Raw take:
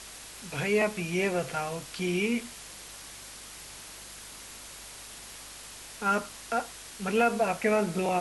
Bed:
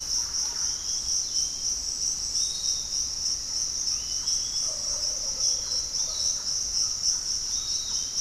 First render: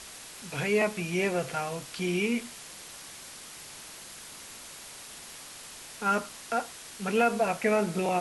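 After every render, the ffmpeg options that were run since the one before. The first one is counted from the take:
-af "bandreject=f=50:t=h:w=4,bandreject=f=100:t=h:w=4"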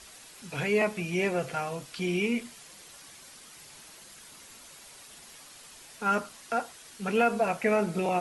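-af "afftdn=nr=7:nf=-46"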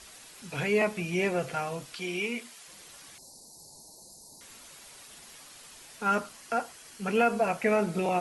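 -filter_complex "[0:a]asettb=1/sr,asplit=3[a][b][c];[a]atrim=end=1.964[d];[b]atrim=start=1.96:end=2.68,asetpts=PTS-STARTPTS,afade=t=in:d=0.004:c=qsin,afade=t=out:st=0.716:d=0.004:c=qsin,highpass=f=530:p=1[e];[c]atrim=start=2.676[f];[d][e]acrossfade=d=0.004:c1=hsin:c2=qsin[g];[g][f]acrossfade=d=0.004:c1=qsin:c2=hsin,asettb=1/sr,asplit=3[h][i][j];[h]atrim=end=3.184[k];[i]atrim=start=3.18:end=4.41,asetpts=PTS-STARTPTS,afade=t=in:d=0.004:c=qsin,afade=t=out:st=1.226:d=0.004:c=qsin,asuperstop=centerf=2000:order=20:qfactor=0.65[l];[j]atrim=start=4.406[m];[k][l]acrossfade=d=0.004:c1=hsin:c2=qsin[n];[n][m]acrossfade=d=0.004:c1=qsin:c2=hsin,asettb=1/sr,asplit=3[o][p][q];[o]atrim=end=6.324[r];[p]atrim=start=6.32:end=7.57,asetpts=PTS-STARTPTS,afade=t=in:d=0.004:c=qsin,afade=t=out:st=1.246:d=0.004:c=qsin,bandreject=f=3.7k:w=12[s];[q]atrim=start=7.566[t];[r][s]acrossfade=d=0.004:c1=hsin:c2=qsin[u];[u][t]acrossfade=d=0.004:c1=qsin:c2=hsin"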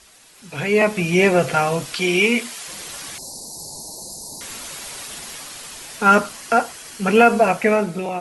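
-af "dynaudnorm=f=170:g=9:m=16.5dB"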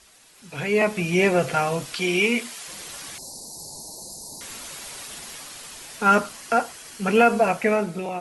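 -af "volume=-4dB"

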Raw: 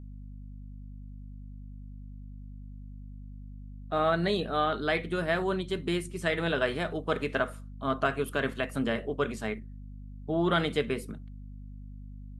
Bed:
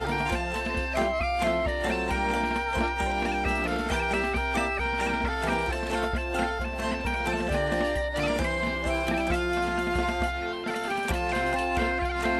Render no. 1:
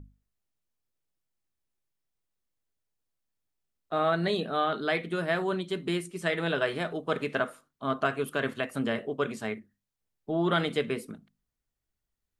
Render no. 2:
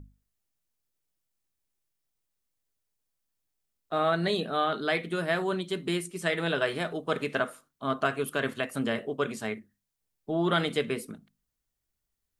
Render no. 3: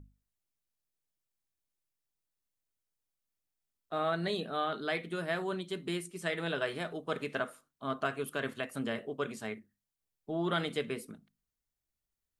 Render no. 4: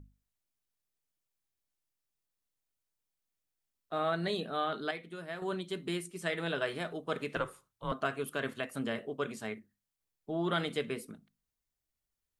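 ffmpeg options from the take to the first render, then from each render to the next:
-af "bandreject=f=50:t=h:w=6,bandreject=f=100:t=h:w=6,bandreject=f=150:t=h:w=6,bandreject=f=200:t=h:w=6,bandreject=f=250:t=h:w=6"
-af "highshelf=f=5k:g=6"
-af "volume=-6dB"
-filter_complex "[0:a]asettb=1/sr,asplit=3[a][b][c];[a]atrim=end=7.364[d];[b]atrim=start=7.36:end=7.92,asetpts=PTS-STARTPTS,afade=t=in:d=0.004:c=qsin,afade=t=out:st=0.556:d=0.004:c=qsin,afreqshift=-110[e];[c]atrim=start=7.916[f];[d][e]acrossfade=d=0.004:c1=hsin:c2=qsin[g];[g][f]acrossfade=d=0.004:c1=qsin:c2=hsin,asplit=3[h][i][j];[h]atrim=end=4.912[k];[i]atrim=start=4.908:end=5.422,asetpts=PTS-STARTPTS,volume=-7.5dB[l];[j]atrim=start=5.418[m];[k][l]acrossfade=d=0.004:c1=hsin:c2=hsin[n];[n][m]acrossfade=d=0.004:c1=hsin:c2=hsin"

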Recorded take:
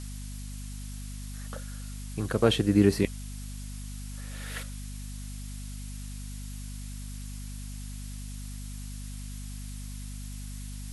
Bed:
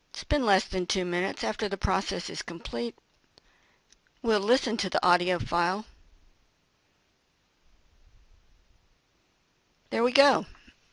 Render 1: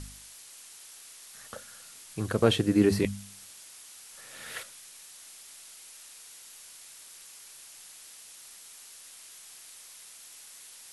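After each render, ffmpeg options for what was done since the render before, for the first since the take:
-af "bandreject=f=50:t=h:w=4,bandreject=f=100:t=h:w=4,bandreject=f=150:t=h:w=4,bandreject=f=200:t=h:w=4,bandreject=f=250:t=h:w=4"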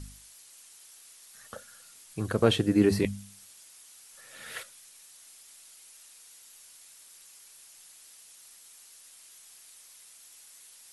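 -af "afftdn=nr=6:nf=-50"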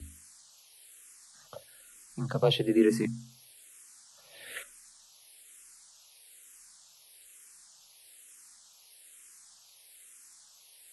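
-filter_complex "[0:a]afreqshift=28,asplit=2[a][b];[b]afreqshift=-1.1[c];[a][c]amix=inputs=2:normalize=1"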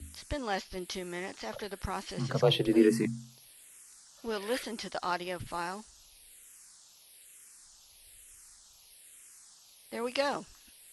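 -filter_complex "[1:a]volume=-10dB[a];[0:a][a]amix=inputs=2:normalize=0"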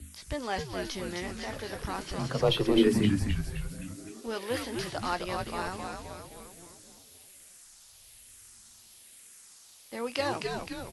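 -filter_complex "[0:a]asplit=2[a][b];[b]adelay=17,volume=-12.5dB[c];[a][c]amix=inputs=2:normalize=0,asplit=8[d][e][f][g][h][i][j][k];[e]adelay=260,afreqshift=-130,volume=-4dB[l];[f]adelay=520,afreqshift=-260,volume=-9.2dB[m];[g]adelay=780,afreqshift=-390,volume=-14.4dB[n];[h]adelay=1040,afreqshift=-520,volume=-19.6dB[o];[i]adelay=1300,afreqshift=-650,volume=-24.8dB[p];[j]adelay=1560,afreqshift=-780,volume=-30dB[q];[k]adelay=1820,afreqshift=-910,volume=-35.2dB[r];[d][l][m][n][o][p][q][r]amix=inputs=8:normalize=0"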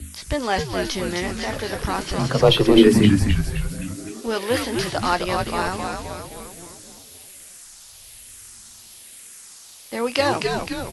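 -af "volume=10.5dB,alimiter=limit=-1dB:level=0:latency=1"

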